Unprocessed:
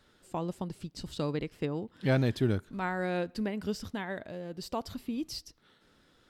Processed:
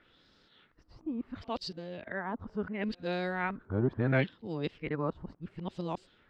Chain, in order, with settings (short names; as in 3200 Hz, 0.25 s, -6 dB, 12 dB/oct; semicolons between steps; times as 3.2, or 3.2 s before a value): whole clip reversed; LFO low-pass sine 0.72 Hz 970–4800 Hz; gain -2 dB